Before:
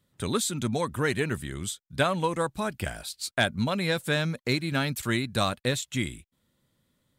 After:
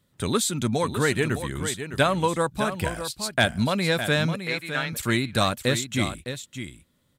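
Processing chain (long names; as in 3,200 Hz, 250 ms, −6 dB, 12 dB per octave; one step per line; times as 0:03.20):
0:04.42–0:04.93: resonant band-pass 1,700 Hz, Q 0.96
single-tap delay 610 ms −9.5 dB
level +3.5 dB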